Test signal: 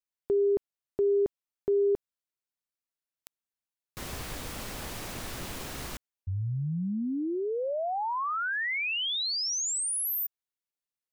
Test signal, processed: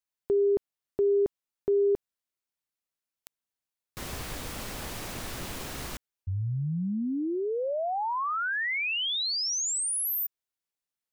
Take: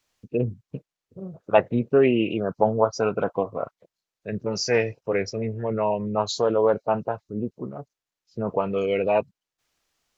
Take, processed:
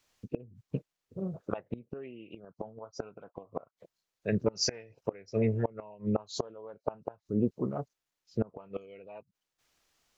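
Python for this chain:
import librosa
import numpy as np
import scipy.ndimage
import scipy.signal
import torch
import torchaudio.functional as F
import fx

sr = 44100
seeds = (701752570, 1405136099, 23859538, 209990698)

y = fx.gate_flip(x, sr, shuts_db=-17.0, range_db=-27)
y = y * librosa.db_to_amplitude(1.0)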